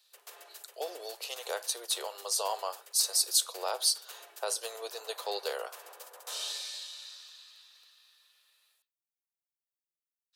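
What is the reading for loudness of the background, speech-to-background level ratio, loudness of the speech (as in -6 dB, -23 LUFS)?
-45.0 LUFS, 13.5 dB, -31.5 LUFS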